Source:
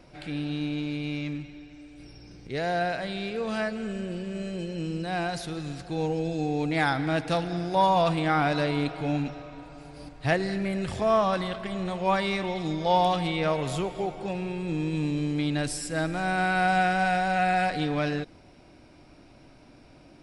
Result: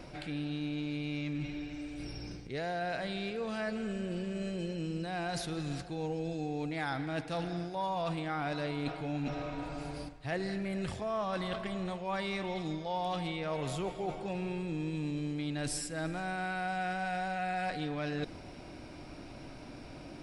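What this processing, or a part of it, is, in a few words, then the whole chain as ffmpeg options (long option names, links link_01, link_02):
compression on the reversed sound: -af "areverse,acompressor=threshold=-40dB:ratio=5,areverse,volume=5.5dB"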